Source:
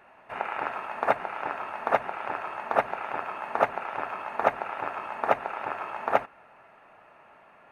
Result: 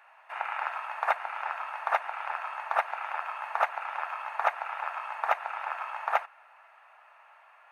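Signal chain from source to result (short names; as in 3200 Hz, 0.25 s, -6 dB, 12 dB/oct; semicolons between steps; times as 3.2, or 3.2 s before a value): HPF 780 Hz 24 dB/oct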